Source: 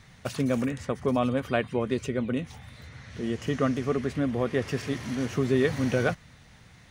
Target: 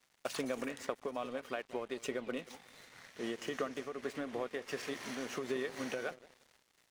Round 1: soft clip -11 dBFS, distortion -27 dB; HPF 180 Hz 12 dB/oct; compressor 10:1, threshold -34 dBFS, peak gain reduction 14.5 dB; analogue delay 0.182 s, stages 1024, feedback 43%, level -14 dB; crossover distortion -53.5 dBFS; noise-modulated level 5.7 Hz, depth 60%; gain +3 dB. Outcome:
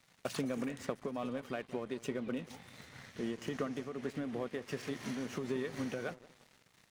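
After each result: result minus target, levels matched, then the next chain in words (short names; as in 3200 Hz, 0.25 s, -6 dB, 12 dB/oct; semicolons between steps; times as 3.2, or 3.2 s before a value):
soft clip: distortion +19 dB; 250 Hz band +3.5 dB
soft clip -1 dBFS, distortion -46 dB; HPF 180 Hz 12 dB/oct; compressor 10:1, threshold -34 dBFS, peak gain reduction 15 dB; analogue delay 0.182 s, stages 1024, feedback 43%, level -14 dB; crossover distortion -53.5 dBFS; noise-modulated level 5.7 Hz, depth 60%; gain +3 dB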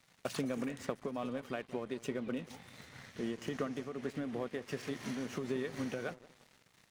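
250 Hz band +3.5 dB
soft clip -1 dBFS, distortion -46 dB; HPF 410 Hz 12 dB/oct; compressor 10:1, threshold -34 dBFS, peak gain reduction 13 dB; analogue delay 0.182 s, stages 1024, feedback 43%, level -14 dB; crossover distortion -53.5 dBFS; noise-modulated level 5.7 Hz, depth 60%; gain +3 dB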